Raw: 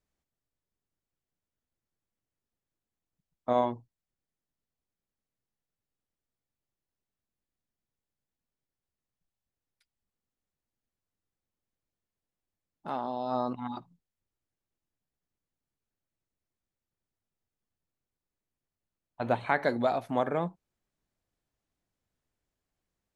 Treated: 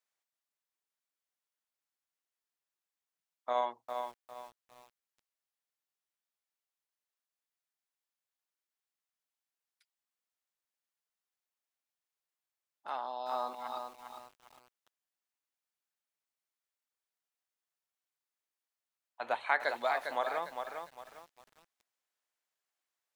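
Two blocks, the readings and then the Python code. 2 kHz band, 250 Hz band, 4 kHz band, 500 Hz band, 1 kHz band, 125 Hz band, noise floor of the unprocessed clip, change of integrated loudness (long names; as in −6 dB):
+0.5 dB, −20.0 dB, +1.0 dB, −6.5 dB, −2.0 dB, below −25 dB, below −85 dBFS, −5.0 dB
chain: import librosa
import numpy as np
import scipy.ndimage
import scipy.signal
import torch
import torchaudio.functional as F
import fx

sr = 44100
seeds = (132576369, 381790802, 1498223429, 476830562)

y = scipy.signal.sosfilt(scipy.signal.butter(2, 860.0, 'highpass', fs=sr, output='sos'), x)
y = fx.echo_crushed(y, sr, ms=403, feedback_pct=35, bits=9, wet_db=-6)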